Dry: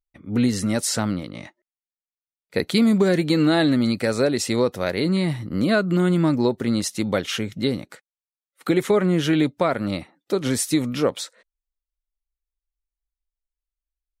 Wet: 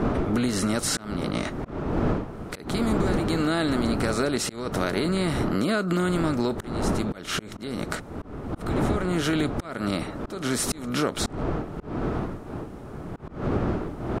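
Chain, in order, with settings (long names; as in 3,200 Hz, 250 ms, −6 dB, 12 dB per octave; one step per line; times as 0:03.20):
compressor on every frequency bin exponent 0.6
wind on the microphone 380 Hz −19 dBFS
parametric band 1,300 Hz +6.5 dB 0.32 octaves
notch filter 520 Hz, Q 12
downward compressor 6 to 1, threshold −21 dBFS, peak gain reduction 16 dB
volume swells 272 ms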